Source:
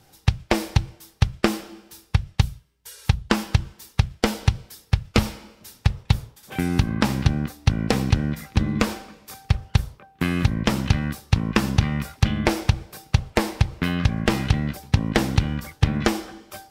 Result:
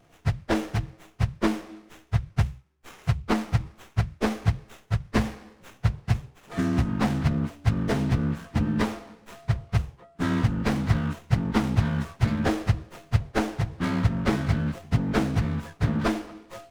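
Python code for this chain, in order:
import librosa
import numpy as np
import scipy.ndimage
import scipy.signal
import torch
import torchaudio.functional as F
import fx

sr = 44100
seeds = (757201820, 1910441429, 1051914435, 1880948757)

y = fx.partial_stretch(x, sr, pct=88)
y = fx.running_max(y, sr, window=9)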